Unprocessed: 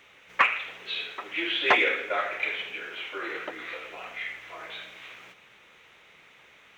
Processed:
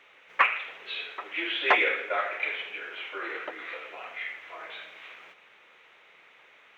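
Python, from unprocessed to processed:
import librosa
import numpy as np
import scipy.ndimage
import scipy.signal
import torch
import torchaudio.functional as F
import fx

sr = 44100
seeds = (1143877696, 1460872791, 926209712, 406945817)

y = fx.bass_treble(x, sr, bass_db=-14, treble_db=-10)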